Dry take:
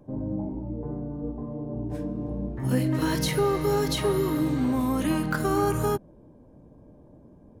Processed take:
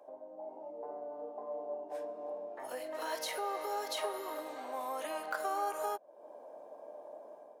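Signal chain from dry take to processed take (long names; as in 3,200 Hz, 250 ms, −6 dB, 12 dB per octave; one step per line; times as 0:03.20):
downward compressor 3 to 1, threshold −43 dBFS, peak gain reduction 17 dB
four-pole ladder high-pass 580 Hz, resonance 60%
automatic gain control gain up to 7 dB
level +8.5 dB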